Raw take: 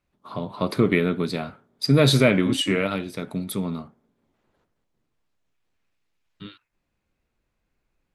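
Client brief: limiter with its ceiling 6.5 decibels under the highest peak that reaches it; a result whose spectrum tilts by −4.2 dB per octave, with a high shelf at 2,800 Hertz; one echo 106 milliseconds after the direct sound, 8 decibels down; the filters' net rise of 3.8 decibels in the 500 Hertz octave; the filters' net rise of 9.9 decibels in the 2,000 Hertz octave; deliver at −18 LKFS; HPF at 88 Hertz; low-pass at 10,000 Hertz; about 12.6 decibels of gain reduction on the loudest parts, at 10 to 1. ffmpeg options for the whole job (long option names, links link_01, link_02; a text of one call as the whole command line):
ffmpeg -i in.wav -af "highpass=88,lowpass=10000,equalizer=frequency=500:width_type=o:gain=4,equalizer=frequency=2000:width_type=o:gain=8,highshelf=frequency=2800:gain=8.5,acompressor=threshold=-21dB:ratio=10,alimiter=limit=-16dB:level=0:latency=1,aecho=1:1:106:0.398,volume=10.5dB" out.wav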